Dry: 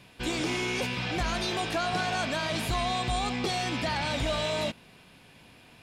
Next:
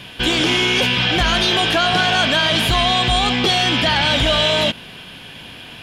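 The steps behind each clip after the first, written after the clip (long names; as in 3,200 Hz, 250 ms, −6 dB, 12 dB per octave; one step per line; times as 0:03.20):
thirty-one-band graphic EQ 1,600 Hz +5 dB, 3,150 Hz +12 dB, 8,000 Hz −4 dB
in parallel at +2 dB: brickwall limiter −27.5 dBFS, peak gain reduction 11.5 dB
on the sum: level +7.5 dB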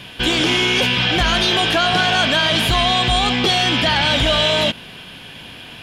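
no processing that can be heard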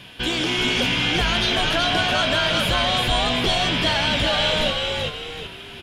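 echo with shifted repeats 380 ms, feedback 39%, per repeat −74 Hz, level −3 dB
level −6 dB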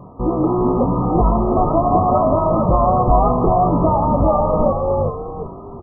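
linear-phase brick-wall low-pass 1,300 Hz
double-tracking delay 22 ms −8 dB
level +8.5 dB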